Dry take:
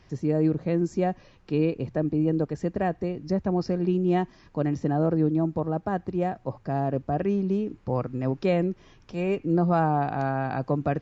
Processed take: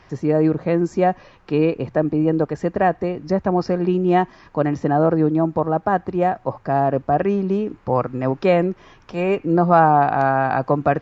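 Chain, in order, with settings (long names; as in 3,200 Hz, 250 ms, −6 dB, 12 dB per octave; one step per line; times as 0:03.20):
parametric band 1,100 Hz +10 dB 2.6 octaves
level +2.5 dB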